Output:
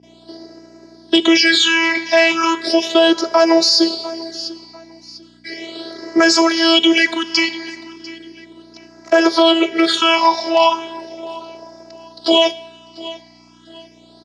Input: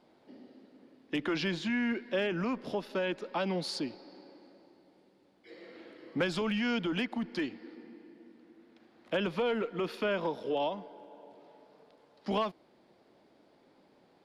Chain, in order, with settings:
noise gate with hold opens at −57 dBFS
spectral tilt +4.5 dB per octave
leveller curve on the samples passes 1
phases set to zero 330 Hz
all-pass phaser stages 8, 0.36 Hz, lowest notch 420–3,300 Hz
mains hum 60 Hz, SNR 25 dB
loudspeaker in its box 220–6,600 Hz, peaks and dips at 400 Hz +7 dB, 710 Hz +5 dB, 2,600 Hz −5 dB
on a send: repeating echo 696 ms, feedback 30%, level −21 dB
on the sum: coupled-rooms reverb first 0.42 s, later 1.9 s, from −16 dB, DRR 13.5 dB
boost into a limiter +24.5 dB
level −1 dB

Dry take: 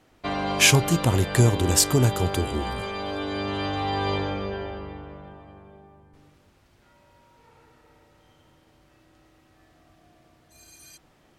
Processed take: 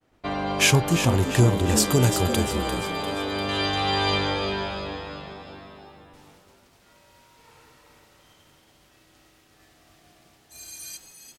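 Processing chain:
downward expander −55 dBFS
high-shelf EQ 2,100 Hz −3.5 dB, from 0:01.84 +5 dB, from 0:03.49 +12 dB
echo with shifted repeats 347 ms, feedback 48%, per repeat +96 Hz, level −9 dB

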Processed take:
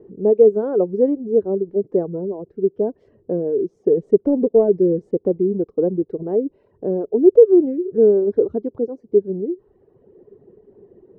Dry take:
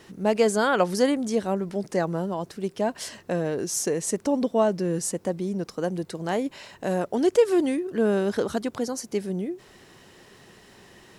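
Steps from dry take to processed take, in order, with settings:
reverb reduction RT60 1 s
0:03.97–0:06.23: leveller curve on the samples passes 1
low-pass with resonance 420 Hz, resonance Q 4.9

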